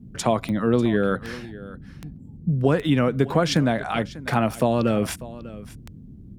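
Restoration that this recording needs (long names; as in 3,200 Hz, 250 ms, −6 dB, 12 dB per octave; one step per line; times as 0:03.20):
click removal
noise reduction from a noise print 26 dB
echo removal 595 ms −17.5 dB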